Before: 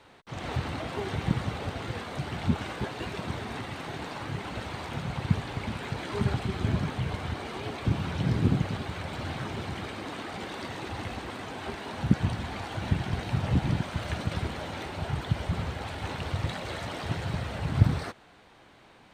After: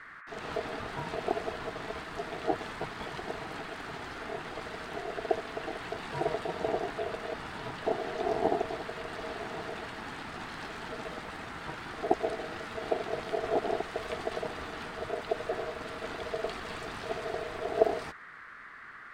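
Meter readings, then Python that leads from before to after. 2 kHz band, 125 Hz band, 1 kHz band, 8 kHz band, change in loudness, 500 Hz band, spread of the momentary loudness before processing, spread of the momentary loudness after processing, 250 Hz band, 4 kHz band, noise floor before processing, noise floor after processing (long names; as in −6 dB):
−1.0 dB, −19.0 dB, +1.5 dB, −4.5 dB, −3.5 dB, +5.5 dB, 10 LU, 9 LU, −8.0 dB, −4.5 dB, −56 dBFS, −48 dBFS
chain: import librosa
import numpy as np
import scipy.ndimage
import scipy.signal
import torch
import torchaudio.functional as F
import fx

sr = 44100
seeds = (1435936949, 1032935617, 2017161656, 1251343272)

y = x * np.sin(2.0 * np.pi * 550.0 * np.arange(len(x)) / sr)
y = fx.dmg_noise_band(y, sr, seeds[0], low_hz=1100.0, high_hz=2000.0, level_db=-47.0)
y = y * librosa.db_to_amplitude(-1.5)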